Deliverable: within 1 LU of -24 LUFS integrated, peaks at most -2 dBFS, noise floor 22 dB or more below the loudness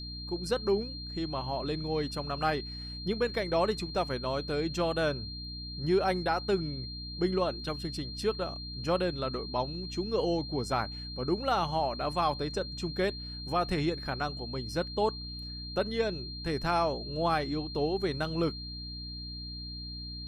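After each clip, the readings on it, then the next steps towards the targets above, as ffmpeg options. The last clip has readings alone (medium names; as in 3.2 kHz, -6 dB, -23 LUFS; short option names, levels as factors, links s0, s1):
hum 60 Hz; highest harmonic 300 Hz; hum level -40 dBFS; steady tone 4.2 kHz; tone level -41 dBFS; loudness -32.0 LUFS; peak level -16.5 dBFS; loudness target -24.0 LUFS
-> -af "bandreject=f=60:t=h:w=6,bandreject=f=120:t=h:w=6,bandreject=f=180:t=h:w=6,bandreject=f=240:t=h:w=6,bandreject=f=300:t=h:w=6"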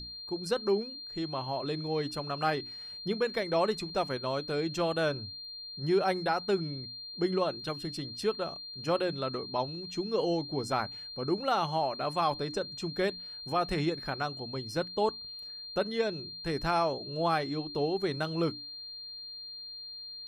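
hum not found; steady tone 4.2 kHz; tone level -41 dBFS
-> -af "bandreject=f=4200:w=30"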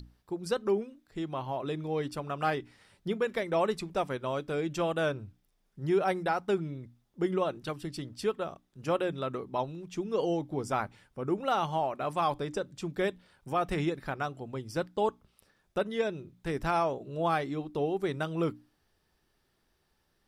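steady tone not found; loudness -32.5 LUFS; peak level -17.0 dBFS; loudness target -24.0 LUFS
-> -af "volume=2.66"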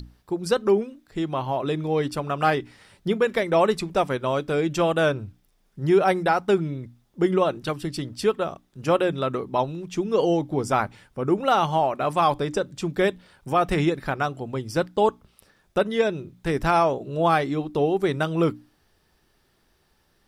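loudness -24.0 LUFS; peak level -8.5 dBFS; noise floor -66 dBFS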